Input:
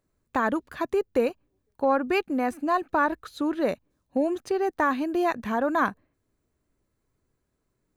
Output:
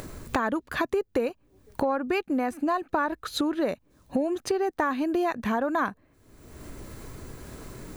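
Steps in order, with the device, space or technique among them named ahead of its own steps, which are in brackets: upward and downward compression (upward compressor, threshold -29 dBFS; compressor 4:1, threshold -34 dBFS, peak gain reduction 14 dB); gain +9 dB

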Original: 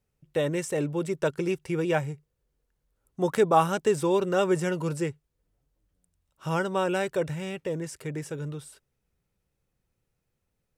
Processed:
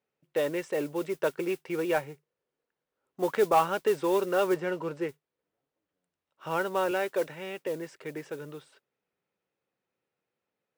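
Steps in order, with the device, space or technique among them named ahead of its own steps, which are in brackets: carbon microphone (BPF 320–3300 Hz; soft clip -13 dBFS, distortion -20 dB; modulation noise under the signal 21 dB); 4.54–5.09 LPF 2900 Hz 6 dB/oct; 6.91–7.67 HPF 170 Hz

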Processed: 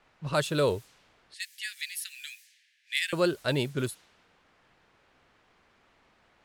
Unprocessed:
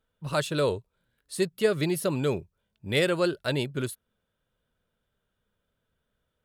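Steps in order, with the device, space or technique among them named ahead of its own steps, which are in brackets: cassette deck with a dynamic noise filter (white noise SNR 25 dB; low-pass opened by the level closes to 1800 Hz, open at -25.5 dBFS); 1.34–3.13 Chebyshev high-pass 1700 Hz, order 6

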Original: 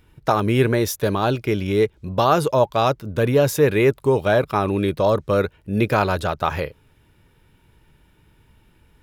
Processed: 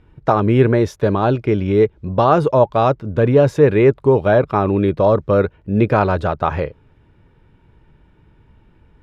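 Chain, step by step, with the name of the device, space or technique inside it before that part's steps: through cloth (LPF 7700 Hz 12 dB/oct; high shelf 2800 Hz -17 dB); gain +5 dB

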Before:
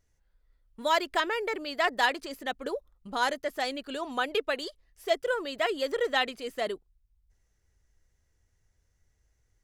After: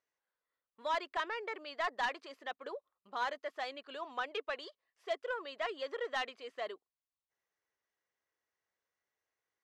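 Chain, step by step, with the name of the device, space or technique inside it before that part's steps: intercom (BPF 480–3800 Hz; bell 1100 Hz +7 dB 0.21 oct; soft clip -19 dBFS, distortion -15 dB); gain -7 dB

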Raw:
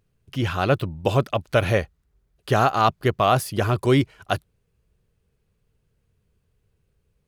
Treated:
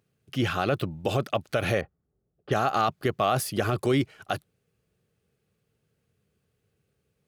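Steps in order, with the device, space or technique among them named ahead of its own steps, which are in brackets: PA system with an anti-feedback notch (HPF 130 Hz 12 dB/oct; Butterworth band-stop 980 Hz, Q 7.9; limiter -13.5 dBFS, peak gain reduction 9.5 dB); 1.81–2.72 low-pass opened by the level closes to 640 Hz, open at -26 dBFS

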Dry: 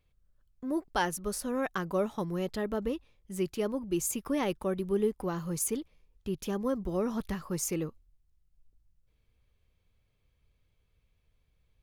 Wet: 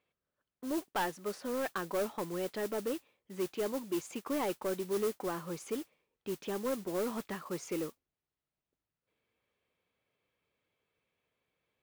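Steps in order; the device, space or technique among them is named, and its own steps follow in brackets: carbon microphone (BPF 300–3100 Hz; soft clip -28 dBFS, distortion -13 dB; modulation noise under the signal 14 dB); gain +1 dB

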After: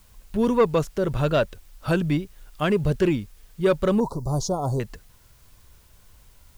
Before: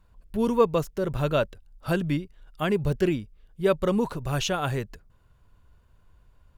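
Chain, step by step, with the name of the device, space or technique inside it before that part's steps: compact cassette (soft clip -14.5 dBFS, distortion -18 dB; LPF 10000 Hz; wow and flutter; white noise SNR 35 dB); 4–4.8 elliptic band-stop 1000–4800 Hz, stop band 60 dB; gain +4 dB

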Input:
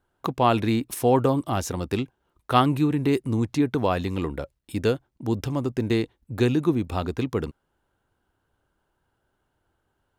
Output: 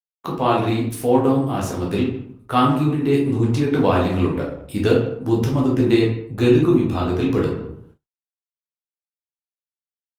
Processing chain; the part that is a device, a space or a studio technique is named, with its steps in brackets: speakerphone in a meeting room (reverb RT60 0.65 s, pre-delay 10 ms, DRR -3.5 dB; speakerphone echo 0.15 s, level -17 dB; AGC gain up to 10 dB; gate -44 dBFS, range -49 dB; gain -3 dB; Opus 24 kbps 48000 Hz)

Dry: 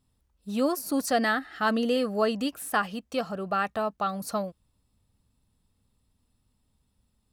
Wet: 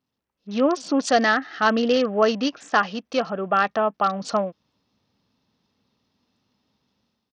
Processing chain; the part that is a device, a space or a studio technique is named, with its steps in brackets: Bluetooth headset (HPF 210 Hz 12 dB/oct; AGC gain up to 11 dB; downsampling 16000 Hz; gain -3 dB; SBC 64 kbps 48000 Hz)

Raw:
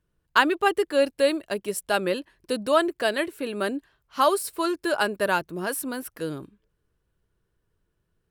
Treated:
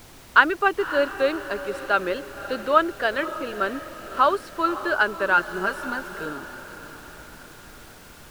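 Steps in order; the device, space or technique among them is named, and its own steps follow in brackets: horn gramophone (BPF 240–3600 Hz; bell 1400 Hz +10.5 dB 0.39 oct; wow and flutter; pink noise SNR 21 dB); 5.37–6.26 comb 5.1 ms, depth 76%; diffused feedback echo 0.564 s, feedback 52%, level -13 dB; gain -1 dB

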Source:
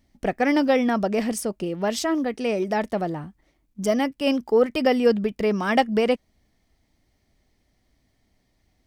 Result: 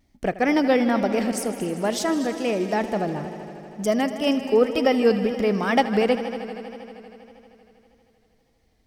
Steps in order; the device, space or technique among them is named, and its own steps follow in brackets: multi-head tape echo (multi-head echo 79 ms, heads all three, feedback 71%, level -17 dB; wow and flutter)

